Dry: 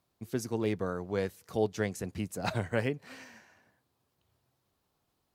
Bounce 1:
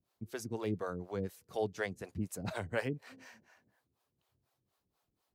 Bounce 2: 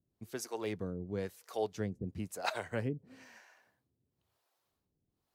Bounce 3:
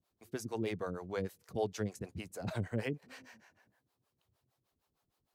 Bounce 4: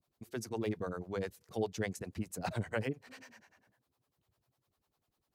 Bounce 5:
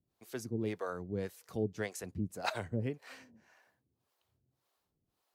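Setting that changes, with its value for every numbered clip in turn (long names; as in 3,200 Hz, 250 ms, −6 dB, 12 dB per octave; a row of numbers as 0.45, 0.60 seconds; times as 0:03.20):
two-band tremolo in antiphase, speed: 4.1, 1, 6.5, 10, 1.8 Hertz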